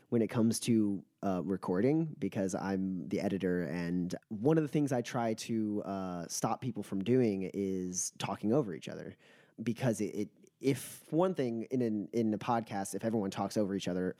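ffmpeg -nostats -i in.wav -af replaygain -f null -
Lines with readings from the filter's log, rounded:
track_gain = +12.9 dB
track_peak = 0.113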